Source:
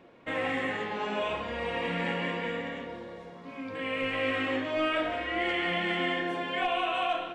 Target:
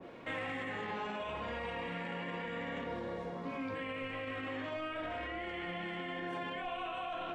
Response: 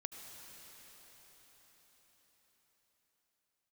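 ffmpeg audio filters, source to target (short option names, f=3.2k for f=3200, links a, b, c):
-filter_complex "[0:a]acrossover=split=180|830[a][b][c];[a]acompressor=threshold=-49dB:ratio=4[d];[b]acompressor=threshold=-45dB:ratio=4[e];[c]acompressor=threshold=-38dB:ratio=4[f];[d][e][f]amix=inputs=3:normalize=0,alimiter=level_in=12dB:limit=-24dB:level=0:latency=1:release=18,volume=-12dB,adynamicequalizer=threshold=0.00141:dfrequency=1600:dqfactor=0.7:tfrequency=1600:tqfactor=0.7:attack=5:release=100:ratio=0.375:range=3:mode=cutabove:tftype=highshelf,volume=5.5dB"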